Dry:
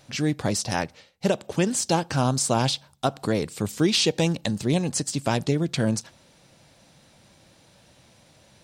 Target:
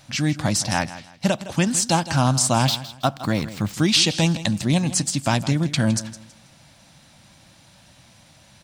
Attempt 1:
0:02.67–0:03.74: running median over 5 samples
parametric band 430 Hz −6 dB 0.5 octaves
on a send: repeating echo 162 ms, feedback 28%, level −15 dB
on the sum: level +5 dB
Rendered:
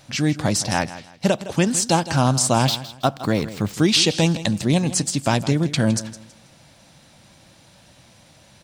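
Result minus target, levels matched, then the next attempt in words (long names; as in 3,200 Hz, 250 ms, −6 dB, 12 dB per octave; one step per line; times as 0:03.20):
500 Hz band +3.0 dB
0:02.67–0:03.74: running median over 5 samples
parametric band 430 Hz −16 dB 0.5 octaves
on a send: repeating echo 162 ms, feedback 28%, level −15 dB
on the sum: level +5 dB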